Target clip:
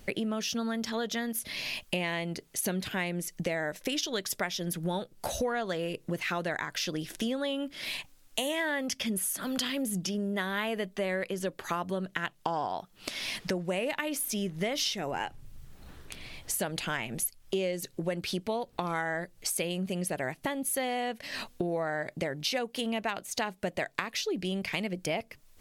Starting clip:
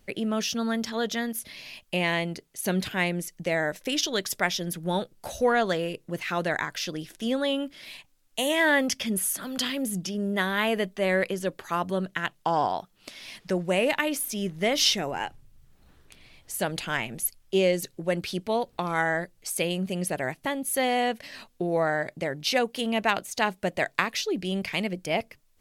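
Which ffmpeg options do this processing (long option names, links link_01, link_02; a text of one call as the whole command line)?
ffmpeg -i in.wav -af "acompressor=threshold=-39dB:ratio=5,volume=8.5dB" out.wav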